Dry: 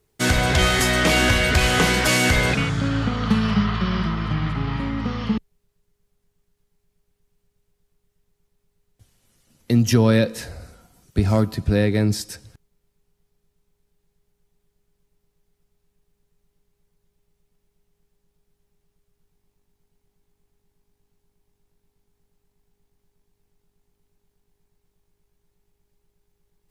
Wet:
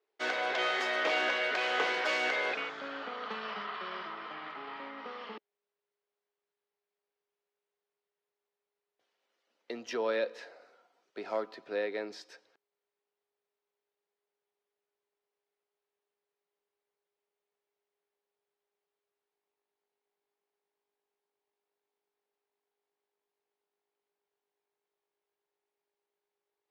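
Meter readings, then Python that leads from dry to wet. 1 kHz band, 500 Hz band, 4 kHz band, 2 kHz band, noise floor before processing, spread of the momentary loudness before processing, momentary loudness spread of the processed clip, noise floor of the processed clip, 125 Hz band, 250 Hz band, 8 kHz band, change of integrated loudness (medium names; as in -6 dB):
-9.0 dB, -10.0 dB, -13.5 dB, -10.0 dB, -74 dBFS, 10 LU, 16 LU, under -85 dBFS, under -40 dB, -25.0 dB, -25.0 dB, -13.5 dB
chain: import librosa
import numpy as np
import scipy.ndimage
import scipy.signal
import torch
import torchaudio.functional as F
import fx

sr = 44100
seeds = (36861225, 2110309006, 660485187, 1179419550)

y = scipy.signal.sosfilt(scipy.signal.butter(4, 420.0, 'highpass', fs=sr, output='sos'), x)
y = fx.air_absorb(y, sr, metres=220.0)
y = y * librosa.db_to_amplitude(-8.0)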